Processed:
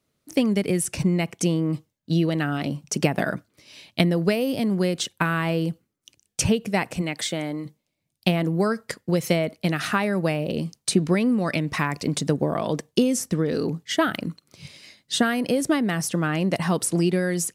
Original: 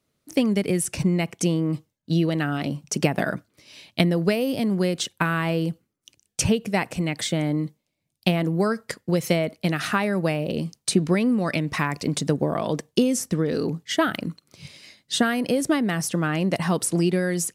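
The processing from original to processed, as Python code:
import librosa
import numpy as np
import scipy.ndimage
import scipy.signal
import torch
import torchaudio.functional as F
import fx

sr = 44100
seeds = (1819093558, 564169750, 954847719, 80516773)

y = fx.highpass(x, sr, hz=fx.line((7.01, 210.0), (7.65, 540.0)), slope=6, at=(7.01, 7.65), fade=0.02)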